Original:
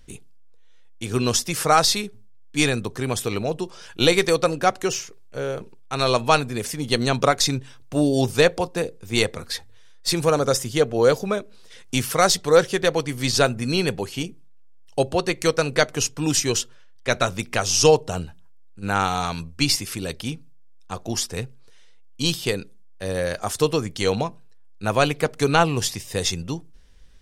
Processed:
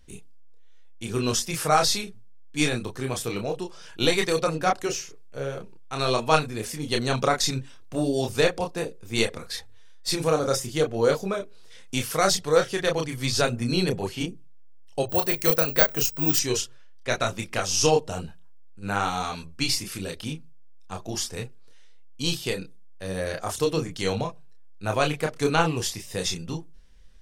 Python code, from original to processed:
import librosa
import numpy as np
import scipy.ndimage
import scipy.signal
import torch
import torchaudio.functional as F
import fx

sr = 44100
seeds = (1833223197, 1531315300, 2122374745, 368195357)

y = fx.chorus_voices(x, sr, voices=4, hz=0.8, base_ms=29, depth_ms=3.4, mix_pct=40)
y = fx.resample_bad(y, sr, factor=2, down='filtered', up='zero_stuff', at=(15.09, 16.39))
y = F.gain(torch.from_numpy(y), -1.0).numpy()